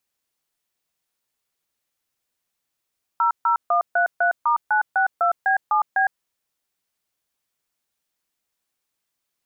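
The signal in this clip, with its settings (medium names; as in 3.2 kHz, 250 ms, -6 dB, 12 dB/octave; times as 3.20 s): DTMF "00133*962B7B", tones 109 ms, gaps 142 ms, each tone -18.5 dBFS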